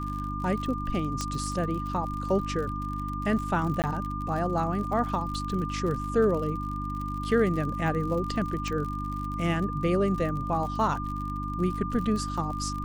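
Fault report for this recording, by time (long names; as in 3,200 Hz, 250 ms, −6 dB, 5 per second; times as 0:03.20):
surface crackle 56 per second −34 dBFS
mains hum 50 Hz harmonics 6 −34 dBFS
whistle 1,200 Hz −34 dBFS
0:01.21: click −16 dBFS
0:03.82–0:03.84: drop-out 18 ms
0:08.68: click −20 dBFS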